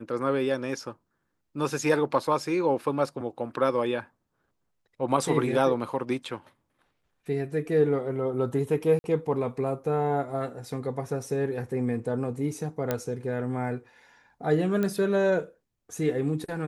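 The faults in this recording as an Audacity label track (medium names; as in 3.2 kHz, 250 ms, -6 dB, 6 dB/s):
8.990000	9.040000	dropout 51 ms
12.910000	12.910000	pop -12 dBFS
14.830000	14.830000	pop -16 dBFS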